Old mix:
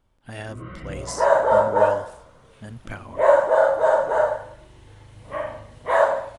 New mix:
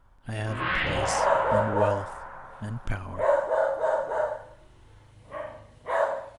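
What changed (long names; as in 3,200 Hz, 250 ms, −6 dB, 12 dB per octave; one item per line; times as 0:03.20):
speech: add low-shelf EQ 120 Hz +10.5 dB
first sound: remove moving average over 52 samples
second sound −7.5 dB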